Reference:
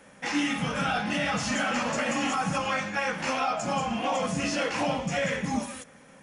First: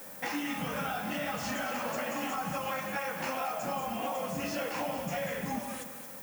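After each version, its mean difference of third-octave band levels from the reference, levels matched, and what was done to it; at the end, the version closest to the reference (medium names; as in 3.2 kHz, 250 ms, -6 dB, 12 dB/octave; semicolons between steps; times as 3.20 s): 6.5 dB: peaking EQ 670 Hz +5.5 dB 2.3 oct; compression, threshold -31 dBFS, peak gain reduction 11.5 dB; added noise violet -46 dBFS; on a send: two-band feedback delay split 1.1 kHz, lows 141 ms, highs 222 ms, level -10.5 dB; on the sum: trim -1.5 dB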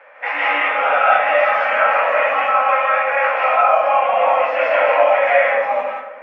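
15.5 dB: Chebyshev band-pass 550–2400 Hz, order 3; gain riding 2 s; flutter echo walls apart 11.6 m, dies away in 0.33 s; algorithmic reverb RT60 0.98 s, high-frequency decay 0.25×, pre-delay 115 ms, DRR -5 dB; trim +8 dB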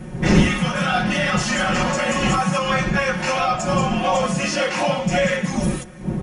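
3.5 dB: wind noise 180 Hz -30 dBFS; high-pass 58 Hz 6 dB/octave; comb 5.5 ms, depth 93%; trim +4.5 dB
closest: third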